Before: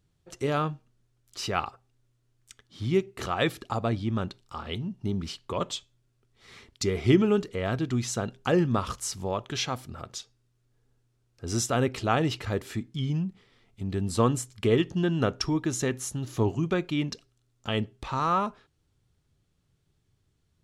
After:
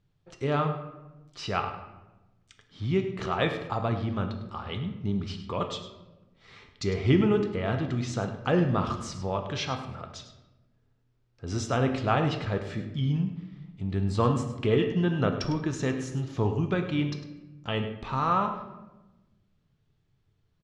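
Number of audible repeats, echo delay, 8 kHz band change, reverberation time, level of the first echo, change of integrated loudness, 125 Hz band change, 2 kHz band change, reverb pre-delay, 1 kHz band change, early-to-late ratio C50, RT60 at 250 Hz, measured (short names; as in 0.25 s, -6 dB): 1, 0.103 s, -9.5 dB, 1.1 s, -13.5 dB, -0.5 dB, +1.5 dB, 0.0 dB, 6 ms, +0.5 dB, 8.0 dB, 1.6 s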